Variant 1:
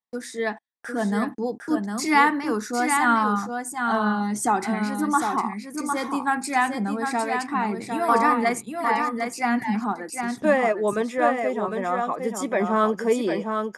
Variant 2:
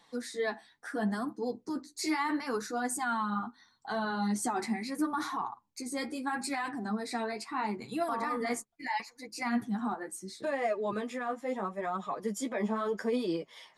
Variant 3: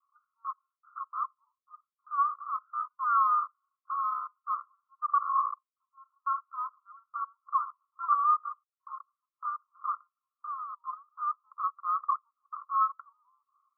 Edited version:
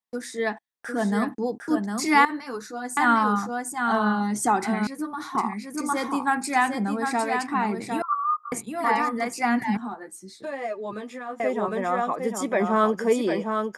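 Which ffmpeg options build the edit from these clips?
-filter_complex "[1:a]asplit=3[a][b][c];[0:a]asplit=5[d][e][f][g][h];[d]atrim=end=2.252[i];[a]atrim=start=2.248:end=2.972[j];[e]atrim=start=2.968:end=4.872[k];[b]atrim=start=4.868:end=5.352[l];[f]atrim=start=5.348:end=8.022[m];[2:a]atrim=start=8.018:end=8.522[n];[g]atrim=start=8.518:end=9.772[o];[c]atrim=start=9.768:end=11.402[p];[h]atrim=start=11.398[q];[i][j]acrossfade=d=0.004:c1=hsin:c2=hsin[r];[r][k]acrossfade=d=0.004:c1=hsin:c2=hsin[s];[s][l]acrossfade=d=0.004:c1=hsin:c2=hsin[t];[t][m]acrossfade=d=0.004:c1=hsin:c2=hsin[u];[u][n]acrossfade=d=0.004:c1=hsin:c2=hsin[v];[v][o]acrossfade=d=0.004:c1=hsin:c2=hsin[w];[w][p]acrossfade=d=0.004:c1=hsin:c2=hsin[x];[x][q]acrossfade=d=0.004:c1=hsin:c2=hsin"

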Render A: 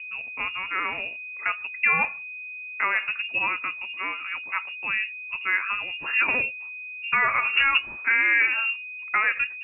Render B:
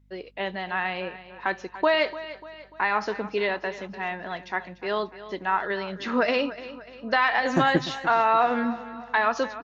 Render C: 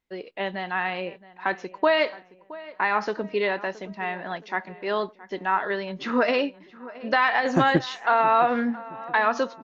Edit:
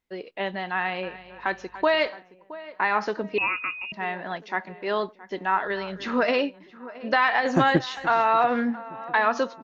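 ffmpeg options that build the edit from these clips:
-filter_complex "[1:a]asplit=3[a][b][c];[2:a]asplit=5[d][e][f][g][h];[d]atrim=end=1.032[i];[a]atrim=start=1.028:end=2.082[j];[e]atrim=start=2.078:end=3.382[k];[0:a]atrim=start=3.378:end=3.922[l];[f]atrim=start=3.918:end=5.672[m];[b]atrim=start=5.668:end=6.242[n];[g]atrim=start=6.238:end=7.972[o];[c]atrim=start=7.968:end=8.442[p];[h]atrim=start=8.438[q];[i][j]acrossfade=d=0.004:c1=hsin:c2=hsin[r];[r][k]acrossfade=d=0.004:c1=hsin:c2=hsin[s];[s][l]acrossfade=d=0.004:c1=hsin:c2=hsin[t];[t][m]acrossfade=d=0.004:c1=hsin:c2=hsin[u];[u][n]acrossfade=d=0.004:c1=hsin:c2=hsin[v];[v][o]acrossfade=d=0.004:c1=hsin:c2=hsin[w];[w][p]acrossfade=d=0.004:c1=hsin:c2=hsin[x];[x][q]acrossfade=d=0.004:c1=hsin:c2=hsin"

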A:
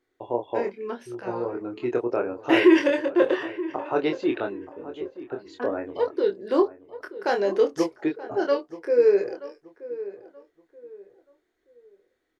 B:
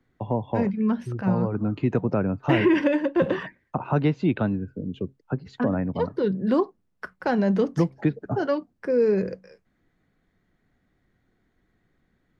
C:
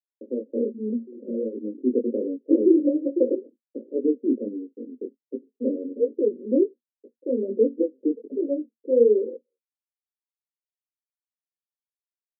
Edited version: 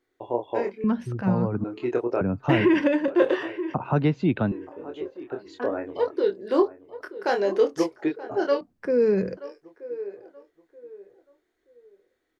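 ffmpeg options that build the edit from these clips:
-filter_complex "[1:a]asplit=4[a][b][c][d];[0:a]asplit=5[e][f][g][h][i];[e]atrim=end=0.842[j];[a]atrim=start=0.838:end=1.642[k];[f]atrim=start=1.638:end=2.212[l];[b]atrim=start=2.208:end=3.082[m];[g]atrim=start=3.078:end=3.742[n];[c]atrim=start=3.738:end=4.522[o];[h]atrim=start=4.518:end=8.612[p];[d]atrim=start=8.608:end=9.372[q];[i]atrim=start=9.368[r];[j][k]acrossfade=d=0.004:c1=hsin:c2=hsin[s];[s][l]acrossfade=d=0.004:c1=hsin:c2=hsin[t];[t][m]acrossfade=d=0.004:c1=hsin:c2=hsin[u];[u][n]acrossfade=d=0.004:c1=hsin:c2=hsin[v];[v][o]acrossfade=d=0.004:c1=hsin:c2=hsin[w];[w][p]acrossfade=d=0.004:c1=hsin:c2=hsin[x];[x][q]acrossfade=d=0.004:c1=hsin:c2=hsin[y];[y][r]acrossfade=d=0.004:c1=hsin:c2=hsin"

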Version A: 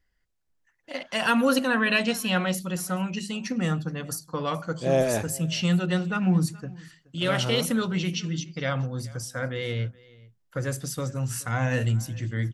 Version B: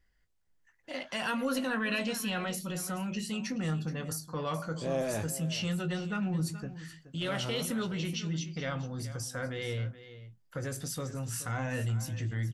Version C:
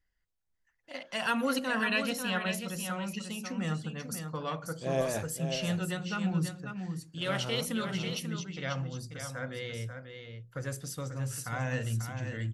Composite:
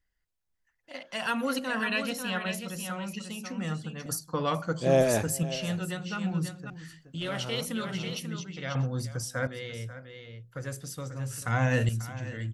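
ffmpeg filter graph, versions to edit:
-filter_complex "[0:a]asplit=3[a][b][c];[2:a]asplit=5[d][e][f][g][h];[d]atrim=end=4.062[i];[a]atrim=start=4.058:end=5.432[j];[e]atrim=start=5.428:end=6.702[k];[1:a]atrim=start=6.698:end=7.392[l];[f]atrim=start=7.388:end=8.752[m];[b]atrim=start=8.748:end=9.472[n];[g]atrim=start=9.468:end=11.422[o];[c]atrim=start=11.418:end=11.892[p];[h]atrim=start=11.888[q];[i][j]acrossfade=d=0.004:c1=hsin:c2=hsin[r];[r][k]acrossfade=d=0.004:c1=hsin:c2=hsin[s];[s][l]acrossfade=d=0.004:c1=hsin:c2=hsin[t];[t][m]acrossfade=d=0.004:c1=hsin:c2=hsin[u];[u][n]acrossfade=d=0.004:c1=hsin:c2=hsin[v];[v][o]acrossfade=d=0.004:c1=hsin:c2=hsin[w];[w][p]acrossfade=d=0.004:c1=hsin:c2=hsin[x];[x][q]acrossfade=d=0.004:c1=hsin:c2=hsin"

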